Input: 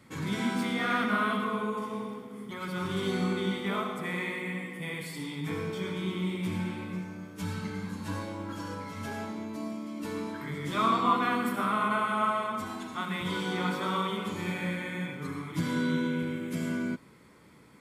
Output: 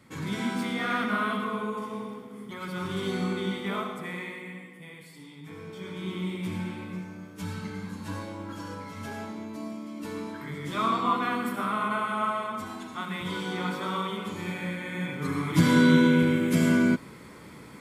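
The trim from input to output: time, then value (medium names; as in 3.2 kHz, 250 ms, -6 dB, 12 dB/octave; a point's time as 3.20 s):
3.82 s 0 dB
4.96 s -10 dB
5.51 s -10 dB
6.14 s -0.5 dB
14.80 s -0.5 dB
15.54 s +10 dB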